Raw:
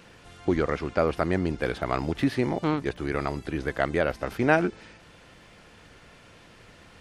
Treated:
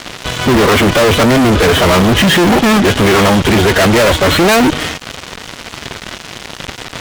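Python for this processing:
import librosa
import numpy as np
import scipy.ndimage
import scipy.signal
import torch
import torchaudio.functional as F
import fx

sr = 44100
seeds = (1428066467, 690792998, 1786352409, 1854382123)

y = fx.freq_compress(x, sr, knee_hz=2900.0, ratio=4.0)
y = fx.pitch_keep_formants(y, sr, semitones=6.0)
y = fx.fuzz(y, sr, gain_db=46.0, gate_db=-48.0)
y = y * librosa.db_to_amplitude(5.5)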